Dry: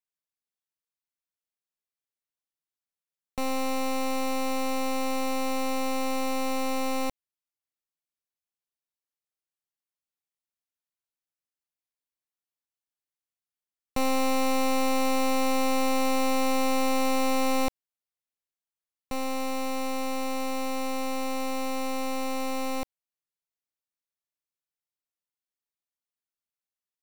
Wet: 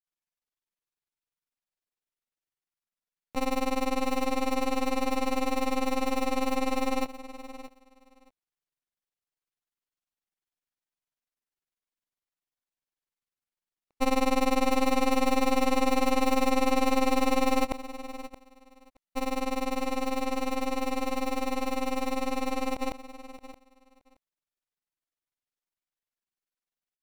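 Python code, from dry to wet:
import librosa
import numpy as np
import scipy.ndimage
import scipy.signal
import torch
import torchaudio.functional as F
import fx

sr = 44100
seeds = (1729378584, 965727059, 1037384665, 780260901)

p1 = np.where(x < 0.0, 10.0 ** (-3.0 / 20.0) * x, x)
p2 = fx.bass_treble(p1, sr, bass_db=1, treble_db=-4)
p3 = fx.granulator(p2, sr, seeds[0], grain_ms=59.0, per_s=20.0, spray_ms=100.0, spread_st=0)
p4 = p3 + fx.echo_feedback(p3, sr, ms=623, feedback_pct=16, wet_db=-14.5, dry=0)
y = F.gain(torch.from_numpy(p4), 5.0).numpy()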